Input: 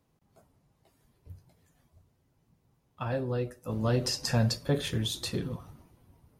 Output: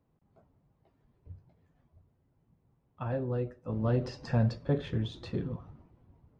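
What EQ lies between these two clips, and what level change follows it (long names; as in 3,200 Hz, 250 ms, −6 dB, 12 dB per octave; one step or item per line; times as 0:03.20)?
head-to-tape spacing loss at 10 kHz 35 dB
0.0 dB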